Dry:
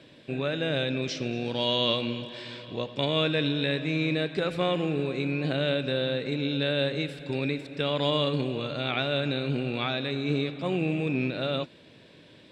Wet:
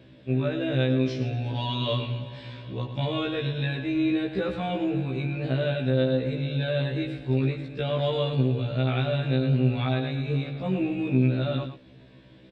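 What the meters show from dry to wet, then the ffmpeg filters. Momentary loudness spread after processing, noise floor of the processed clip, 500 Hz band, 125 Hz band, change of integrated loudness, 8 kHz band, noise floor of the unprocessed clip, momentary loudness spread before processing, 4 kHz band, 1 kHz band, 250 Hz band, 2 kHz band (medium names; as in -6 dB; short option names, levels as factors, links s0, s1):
6 LU, -51 dBFS, 0.0 dB, +7.0 dB, +1.5 dB, no reading, -53 dBFS, 7 LU, -6.0 dB, -0.5 dB, +2.5 dB, -3.5 dB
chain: -filter_complex "[0:a]aemphasis=mode=reproduction:type=bsi,asplit=2[s0][s1];[s1]adelay=110.8,volume=0.355,highshelf=f=4000:g=-2.49[s2];[s0][s2]amix=inputs=2:normalize=0,afftfilt=real='re*1.73*eq(mod(b,3),0)':imag='im*1.73*eq(mod(b,3),0)':win_size=2048:overlap=0.75"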